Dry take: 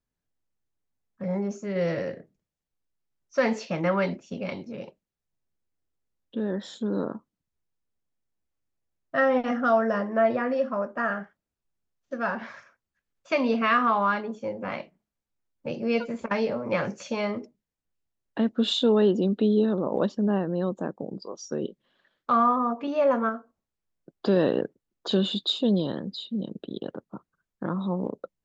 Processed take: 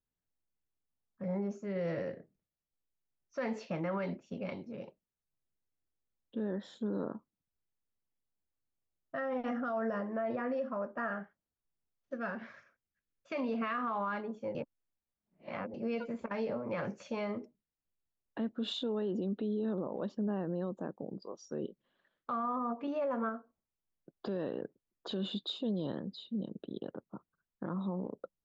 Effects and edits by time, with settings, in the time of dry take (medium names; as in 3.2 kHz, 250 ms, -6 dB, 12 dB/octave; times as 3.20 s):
12.15–13.35 s: peaking EQ 910 Hz -8.5 dB
14.55–15.74 s: reverse
whole clip: treble shelf 3.8 kHz -10.5 dB; peak limiter -21 dBFS; trim -6.5 dB